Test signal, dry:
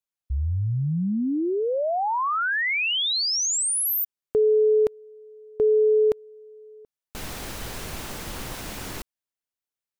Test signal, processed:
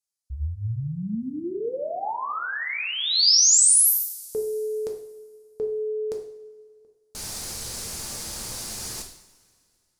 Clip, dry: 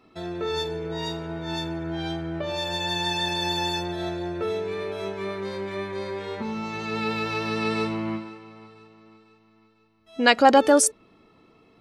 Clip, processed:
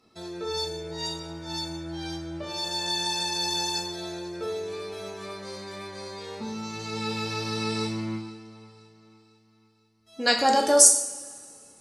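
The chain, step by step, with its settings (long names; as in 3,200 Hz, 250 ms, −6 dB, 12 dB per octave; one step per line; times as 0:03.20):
flat-topped bell 7,000 Hz +13 dB
coupled-rooms reverb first 0.61 s, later 2.4 s, from −19 dB, DRR 1.5 dB
level −7.5 dB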